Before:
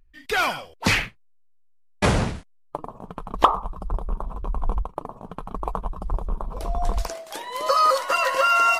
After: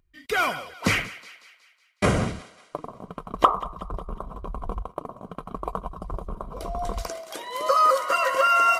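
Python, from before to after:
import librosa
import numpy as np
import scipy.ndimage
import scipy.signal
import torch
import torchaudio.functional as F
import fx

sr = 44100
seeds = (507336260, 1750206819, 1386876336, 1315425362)

y = fx.notch_comb(x, sr, f0_hz=860.0)
y = fx.echo_thinned(y, sr, ms=184, feedback_pct=51, hz=540.0, wet_db=-17)
y = fx.dynamic_eq(y, sr, hz=4200.0, q=1.7, threshold_db=-41.0, ratio=4.0, max_db=-6)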